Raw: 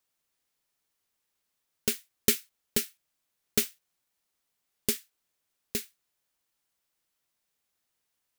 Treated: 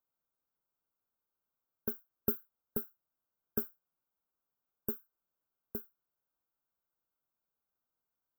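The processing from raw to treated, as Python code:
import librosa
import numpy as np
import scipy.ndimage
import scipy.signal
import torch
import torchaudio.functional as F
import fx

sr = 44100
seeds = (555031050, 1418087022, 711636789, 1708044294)

y = fx.brickwall_bandstop(x, sr, low_hz=1600.0, high_hz=13000.0)
y = y * librosa.db_to_amplitude(-6.0)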